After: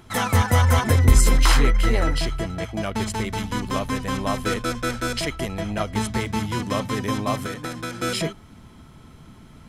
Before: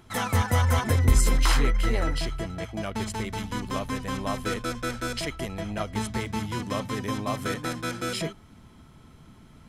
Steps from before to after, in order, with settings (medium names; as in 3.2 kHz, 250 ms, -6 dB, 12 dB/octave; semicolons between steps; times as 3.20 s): 7.38–8.01 s: compression 6:1, threshold -32 dBFS, peak gain reduction 7.5 dB; trim +5 dB